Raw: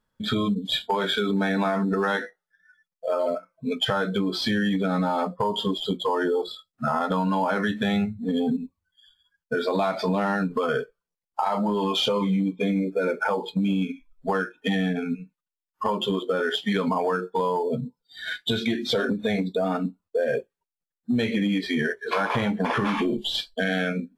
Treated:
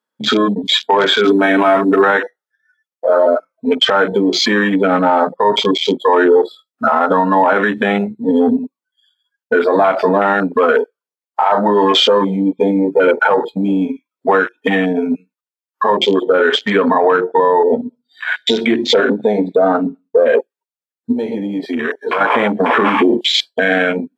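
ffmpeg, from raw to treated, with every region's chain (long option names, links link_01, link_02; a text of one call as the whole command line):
ffmpeg -i in.wav -filter_complex "[0:a]asettb=1/sr,asplit=3[link_01][link_02][link_03];[link_01]atrim=end=1.244[link_04];[link_02]atrim=start=1.24:end=2.02,asetpts=PTS-STARTPTS,afade=type=in:duration=0.004:curve=qsin,afade=type=out:start_time=0.776:duration=0.004:curve=qsin,highshelf=frequency=6000:gain=10,aecho=1:1:7.2:0.6,atrim=end_sample=34398[link_05];[link_03]atrim=start=2.016[link_06];[link_04][link_05]acrossfade=duration=0.004:curve1=hsin:curve2=qsin[link_07];[link_07][link_06]acrossfade=duration=0.004:curve1=qsin:curve2=hsin,asettb=1/sr,asplit=3[link_08][link_09][link_10];[link_08]atrim=end=16.204[link_11];[link_09]atrim=start=16.2:end=20.35,asetpts=PTS-STARTPTS,afade=type=in:duration=0.004:curve=qsin,afade=type=out:start_time=4.146:duration=0.004:curve=qsin,highshelf=frequency=4700:gain=-5.5,aecho=1:1:66|132|198:0.0944|0.0378|0.0151,atrim=end_sample=183015[link_12];[link_10]atrim=start=20.346[link_13];[link_11][link_12]acrossfade=duration=0.004:curve1=hsin:curve2=qsin[link_14];[link_14][link_13]acrossfade=duration=0.004:curve1=qsin:curve2=hsin,asettb=1/sr,asplit=3[link_15][link_16][link_17];[link_15]atrim=end=21.124[link_18];[link_16]atrim=start=21.12:end=22.21,asetpts=PTS-STARTPTS,afade=type=in:duration=0.004:curve=qsin,afade=type=out:start_time=1.086:duration=0.004:curve=qsin,asubboost=boost=7:cutoff=240,acompressor=threshold=-28dB:ratio=3:attack=3.2:release=140:knee=1:detection=peak[link_19];[link_17]atrim=start=22.206[link_20];[link_18][link_19]acrossfade=duration=0.004:curve1=hsin:curve2=qsin[link_21];[link_21][link_20]acrossfade=duration=0.004:curve1=qsin:curve2=hsin,highpass=frequency=260:width=0.5412,highpass=frequency=260:width=1.3066,afwtdn=0.0251,alimiter=level_in=16.5dB:limit=-1dB:release=50:level=0:latency=1,volume=-2dB" out.wav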